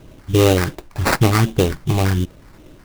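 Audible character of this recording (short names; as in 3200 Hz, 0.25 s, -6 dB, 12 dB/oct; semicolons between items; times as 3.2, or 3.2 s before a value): phasing stages 4, 2.7 Hz, lowest notch 510–4100 Hz; aliases and images of a low sample rate 3300 Hz, jitter 20%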